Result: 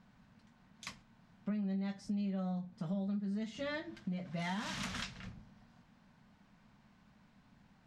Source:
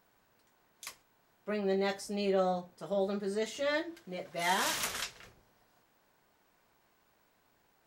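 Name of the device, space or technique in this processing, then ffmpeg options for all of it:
jukebox: -af "lowpass=5100,lowshelf=frequency=280:width_type=q:width=3:gain=9.5,acompressor=threshold=-38dB:ratio=6,volume=1.5dB"

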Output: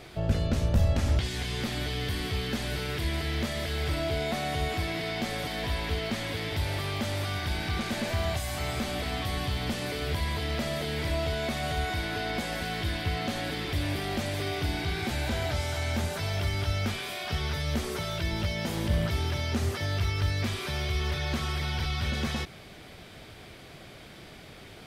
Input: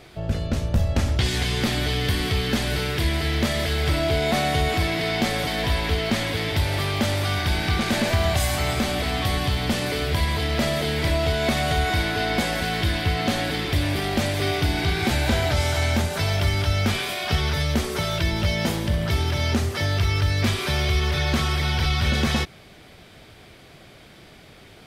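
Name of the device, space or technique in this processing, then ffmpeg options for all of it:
de-esser from a sidechain: -filter_complex "[0:a]asplit=2[link_01][link_02];[link_02]highpass=frequency=5000:poles=1,apad=whole_len=1096470[link_03];[link_01][link_03]sidechaincompress=threshold=-43dB:ratio=3:attack=3.4:release=27"

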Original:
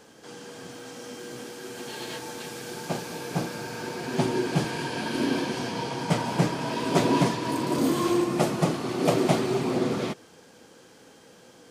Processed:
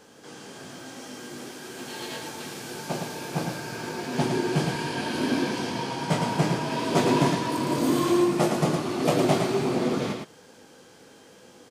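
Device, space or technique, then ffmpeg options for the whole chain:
slapback doubling: -filter_complex "[0:a]asplit=3[link_01][link_02][link_03];[link_02]adelay=20,volume=-6dB[link_04];[link_03]adelay=111,volume=-4.5dB[link_05];[link_01][link_04][link_05]amix=inputs=3:normalize=0,volume=-1dB"

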